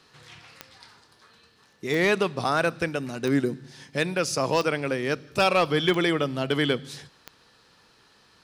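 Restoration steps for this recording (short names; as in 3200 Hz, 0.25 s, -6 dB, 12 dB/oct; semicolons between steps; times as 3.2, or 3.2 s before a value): clip repair -12.5 dBFS; de-click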